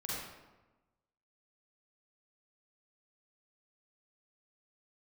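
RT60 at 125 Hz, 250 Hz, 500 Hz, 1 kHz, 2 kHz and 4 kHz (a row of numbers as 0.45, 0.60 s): 1.3, 1.3, 1.2, 1.1, 0.90, 0.70 s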